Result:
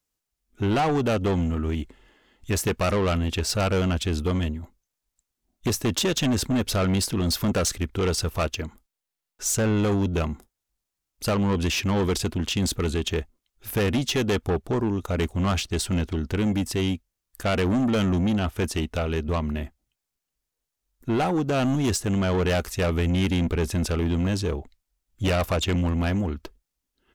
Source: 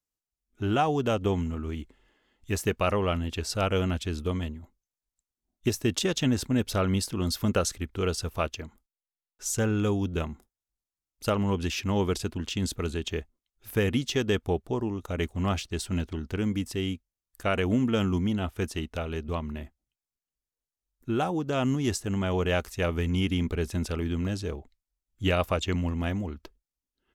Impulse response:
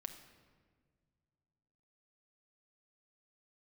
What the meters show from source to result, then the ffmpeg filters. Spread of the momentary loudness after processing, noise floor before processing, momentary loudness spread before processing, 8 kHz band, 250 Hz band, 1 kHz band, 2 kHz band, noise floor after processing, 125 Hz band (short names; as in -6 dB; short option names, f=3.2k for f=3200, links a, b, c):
8 LU, under -85 dBFS, 9 LU, +6.0 dB, +4.0 dB, +3.0 dB, +3.5 dB, -84 dBFS, +4.5 dB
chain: -af "asoftclip=type=tanh:threshold=-27.5dB,volume=8.5dB"